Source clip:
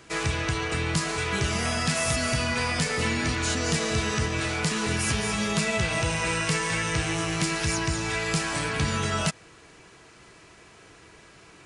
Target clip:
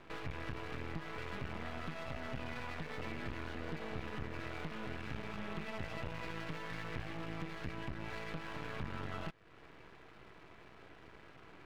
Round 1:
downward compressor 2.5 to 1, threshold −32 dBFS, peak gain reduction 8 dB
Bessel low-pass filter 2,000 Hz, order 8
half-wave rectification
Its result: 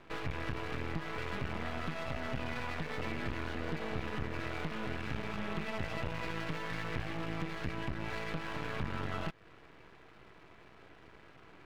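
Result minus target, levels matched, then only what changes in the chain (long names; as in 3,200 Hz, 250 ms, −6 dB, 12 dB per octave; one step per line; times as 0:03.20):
downward compressor: peak gain reduction −5 dB
change: downward compressor 2.5 to 1, threshold −40 dBFS, peak gain reduction 12.5 dB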